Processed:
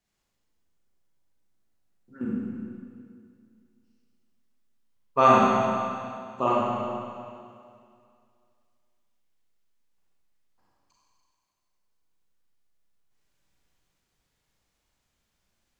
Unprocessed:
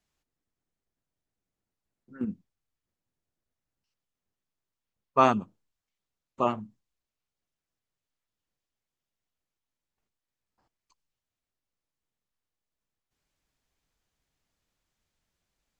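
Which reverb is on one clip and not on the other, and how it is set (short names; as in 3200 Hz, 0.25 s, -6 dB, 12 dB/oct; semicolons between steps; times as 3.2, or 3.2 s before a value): Schroeder reverb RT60 2.3 s, combs from 32 ms, DRR -6 dB; gain -1.5 dB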